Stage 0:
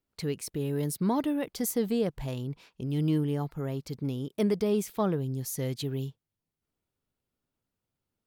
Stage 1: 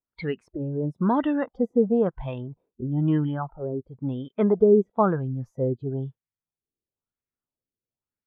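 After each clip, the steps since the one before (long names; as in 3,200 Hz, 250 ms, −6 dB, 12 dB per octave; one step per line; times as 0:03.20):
noise reduction from a noise print of the clip's start 17 dB
auto-filter low-pass sine 1 Hz 390–2,200 Hz
level +4.5 dB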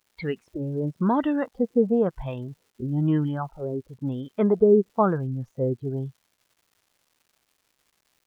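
surface crackle 390 per second −53 dBFS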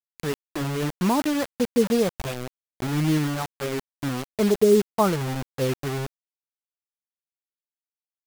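bit reduction 5 bits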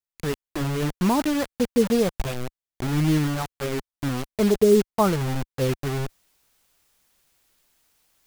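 low-shelf EQ 68 Hz +11.5 dB
reversed playback
upward compression, threshold −41 dBFS
reversed playback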